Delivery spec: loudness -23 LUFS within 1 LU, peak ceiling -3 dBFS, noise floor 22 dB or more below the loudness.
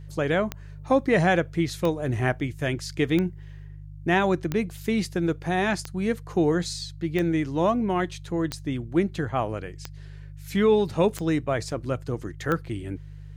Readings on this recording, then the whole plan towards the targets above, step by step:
clicks found 10; hum 50 Hz; highest harmonic 150 Hz; hum level -38 dBFS; loudness -26.0 LUFS; peak level -9.5 dBFS; loudness target -23.0 LUFS
-> de-click; de-hum 50 Hz, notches 3; trim +3 dB

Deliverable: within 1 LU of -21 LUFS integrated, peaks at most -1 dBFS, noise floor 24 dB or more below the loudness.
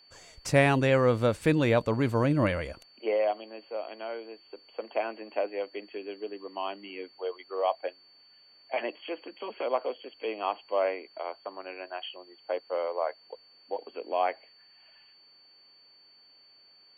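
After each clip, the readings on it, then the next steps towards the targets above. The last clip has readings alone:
steady tone 4.5 kHz; tone level -56 dBFS; loudness -30.5 LUFS; peak level -9.5 dBFS; loudness target -21.0 LUFS
-> band-stop 4.5 kHz, Q 30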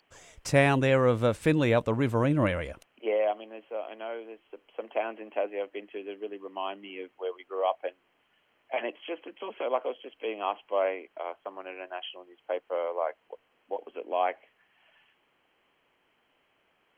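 steady tone not found; loudness -30.5 LUFS; peak level -9.5 dBFS; loudness target -21.0 LUFS
-> trim +9.5 dB; peak limiter -1 dBFS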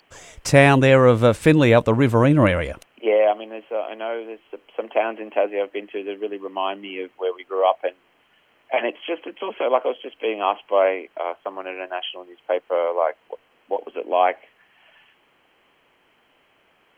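loudness -21.0 LUFS; peak level -1.0 dBFS; noise floor -61 dBFS

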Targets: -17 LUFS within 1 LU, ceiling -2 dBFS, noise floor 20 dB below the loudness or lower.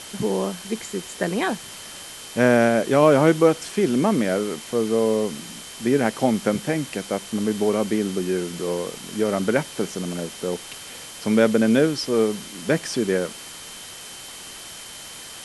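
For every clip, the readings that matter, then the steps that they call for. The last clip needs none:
steady tone 3.1 kHz; tone level -44 dBFS; noise floor -39 dBFS; noise floor target -43 dBFS; loudness -22.5 LUFS; peak level -3.5 dBFS; loudness target -17.0 LUFS
-> band-stop 3.1 kHz, Q 30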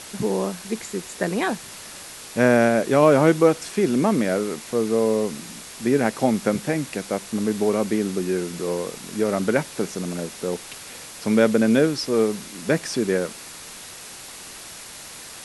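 steady tone not found; noise floor -40 dBFS; noise floor target -43 dBFS
-> noise reduction 6 dB, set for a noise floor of -40 dBFS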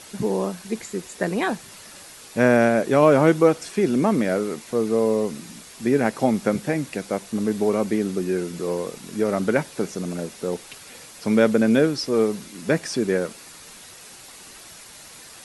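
noise floor -44 dBFS; loudness -22.5 LUFS; peak level -3.5 dBFS; loudness target -17.0 LUFS
-> trim +5.5 dB; peak limiter -2 dBFS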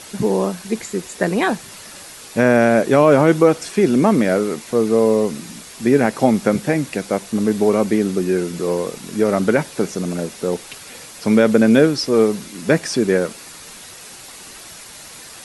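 loudness -17.5 LUFS; peak level -2.0 dBFS; noise floor -38 dBFS

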